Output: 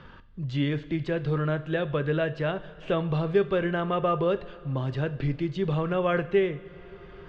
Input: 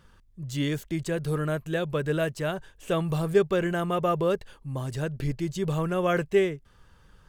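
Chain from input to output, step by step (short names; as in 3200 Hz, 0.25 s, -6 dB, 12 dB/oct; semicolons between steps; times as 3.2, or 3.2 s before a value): LPF 3800 Hz 24 dB/oct; two-slope reverb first 0.49 s, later 3.2 s, from -16 dB, DRR 11 dB; three-band squash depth 40%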